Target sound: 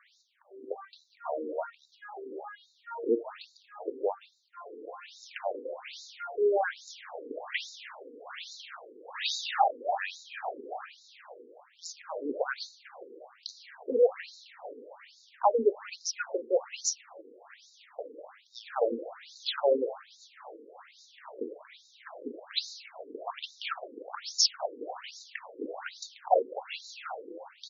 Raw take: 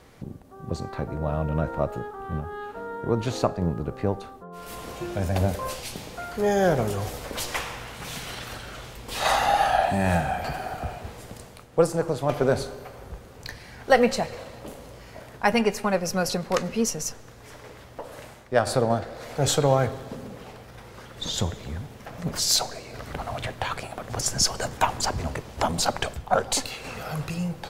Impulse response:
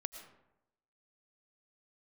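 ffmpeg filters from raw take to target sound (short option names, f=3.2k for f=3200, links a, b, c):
-filter_complex "[0:a]asplit=4[a][b][c][d];[b]adelay=365,afreqshift=100,volume=-23.5dB[e];[c]adelay=730,afreqshift=200,volume=-29.3dB[f];[d]adelay=1095,afreqshift=300,volume=-35.2dB[g];[a][e][f][g]amix=inputs=4:normalize=0,afftfilt=real='re*between(b*sr/1024,350*pow(5200/350,0.5+0.5*sin(2*PI*1.2*pts/sr))/1.41,350*pow(5200/350,0.5+0.5*sin(2*PI*1.2*pts/sr))*1.41)':imag='im*between(b*sr/1024,350*pow(5200/350,0.5+0.5*sin(2*PI*1.2*pts/sr))/1.41,350*pow(5200/350,0.5+0.5*sin(2*PI*1.2*pts/sr))*1.41)':win_size=1024:overlap=0.75"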